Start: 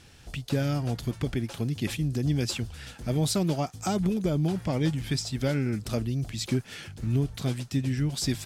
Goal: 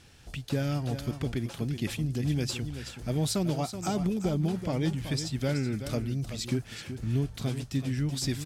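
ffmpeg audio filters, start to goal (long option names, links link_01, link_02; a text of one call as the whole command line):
ffmpeg -i in.wav -af "aecho=1:1:377:0.316,volume=-2.5dB" out.wav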